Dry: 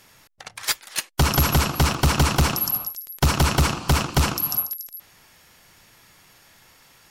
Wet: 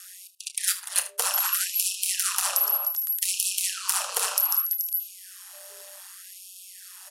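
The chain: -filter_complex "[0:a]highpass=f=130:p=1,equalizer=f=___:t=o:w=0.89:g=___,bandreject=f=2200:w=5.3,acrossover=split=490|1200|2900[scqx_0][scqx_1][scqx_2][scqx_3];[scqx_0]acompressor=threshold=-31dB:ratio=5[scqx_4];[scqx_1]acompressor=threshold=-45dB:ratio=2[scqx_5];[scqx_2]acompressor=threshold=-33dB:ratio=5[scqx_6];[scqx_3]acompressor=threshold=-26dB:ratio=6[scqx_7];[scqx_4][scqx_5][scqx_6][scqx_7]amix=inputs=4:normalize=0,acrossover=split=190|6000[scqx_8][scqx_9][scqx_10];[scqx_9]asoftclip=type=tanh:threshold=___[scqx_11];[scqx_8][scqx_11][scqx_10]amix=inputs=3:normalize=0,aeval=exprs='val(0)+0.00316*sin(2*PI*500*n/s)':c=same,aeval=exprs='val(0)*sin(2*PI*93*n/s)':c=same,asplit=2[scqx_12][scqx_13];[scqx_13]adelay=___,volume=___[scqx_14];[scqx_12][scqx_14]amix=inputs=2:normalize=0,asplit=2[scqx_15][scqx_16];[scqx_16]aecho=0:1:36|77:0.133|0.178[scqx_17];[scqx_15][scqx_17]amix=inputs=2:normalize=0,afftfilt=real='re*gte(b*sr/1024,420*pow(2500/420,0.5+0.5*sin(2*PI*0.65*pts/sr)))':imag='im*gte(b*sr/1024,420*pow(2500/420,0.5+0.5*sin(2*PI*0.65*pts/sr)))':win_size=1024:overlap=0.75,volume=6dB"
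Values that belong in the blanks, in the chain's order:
10000, 14.5, -27.5dB, 30, -13dB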